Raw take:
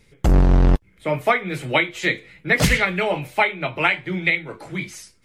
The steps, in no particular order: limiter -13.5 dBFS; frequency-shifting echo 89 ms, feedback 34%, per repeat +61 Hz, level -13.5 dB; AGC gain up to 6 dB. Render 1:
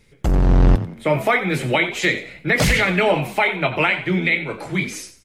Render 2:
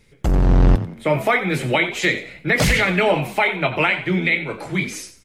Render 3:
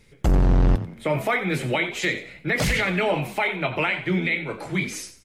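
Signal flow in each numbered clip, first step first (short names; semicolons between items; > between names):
limiter > AGC > frequency-shifting echo; limiter > frequency-shifting echo > AGC; AGC > limiter > frequency-shifting echo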